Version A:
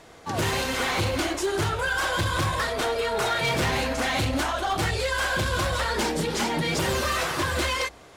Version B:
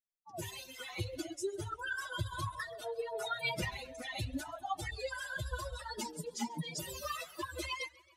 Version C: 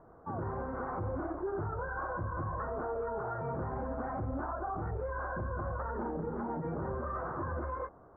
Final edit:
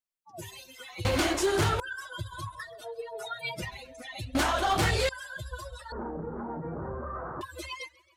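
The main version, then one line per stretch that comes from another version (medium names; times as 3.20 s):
B
1.05–1.80 s: from A
4.35–5.09 s: from A
5.92–7.41 s: from C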